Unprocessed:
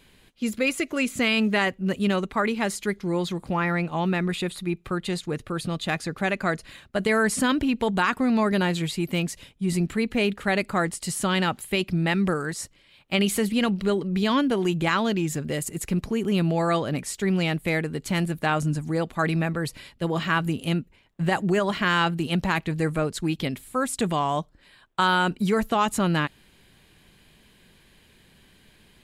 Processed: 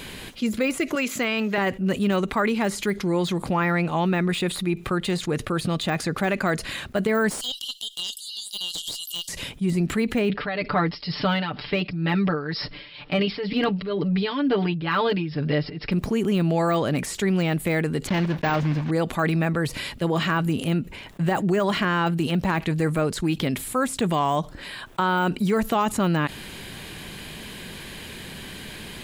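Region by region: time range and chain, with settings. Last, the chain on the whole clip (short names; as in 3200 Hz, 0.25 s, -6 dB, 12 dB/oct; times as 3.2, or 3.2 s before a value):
0.95–1.58 HPF 520 Hz 6 dB/oct + bell 9200 Hz -15 dB 0.28 oct
7.3–9.29 brick-wall FIR high-pass 2800 Hz + tube stage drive 21 dB, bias 0.55
10.29–15.92 comb 6.8 ms, depth 97% + tremolo 2.1 Hz, depth 88% + brick-wall FIR low-pass 5500 Hz
18.07–18.92 block floating point 3-bit + air absorption 250 m + notch 1300 Hz, Q 9.9
whole clip: de-esser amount 95%; low shelf 66 Hz -7 dB; fast leveller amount 50%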